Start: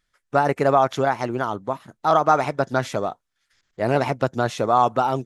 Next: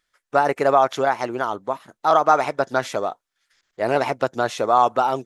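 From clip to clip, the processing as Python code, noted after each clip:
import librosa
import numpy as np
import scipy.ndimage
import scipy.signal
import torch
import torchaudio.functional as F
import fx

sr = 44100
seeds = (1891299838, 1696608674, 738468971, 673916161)

y = fx.bass_treble(x, sr, bass_db=-11, treble_db=0)
y = y * 10.0 ** (1.5 / 20.0)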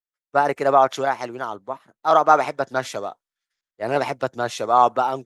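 y = fx.band_widen(x, sr, depth_pct=70)
y = y * 10.0 ** (-1.0 / 20.0)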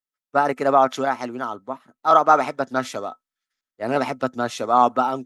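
y = fx.small_body(x, sr, hz=(250.0, 1300.0), ring_ms=95, db=11)
y = y * 10.0 ** (-1.0 / 20.0)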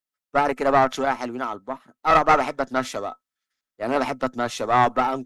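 y = fx.diode_clip(x, sr, knee_db=-17.5)
y = y * 10.0 ** (1.0 / 20.0)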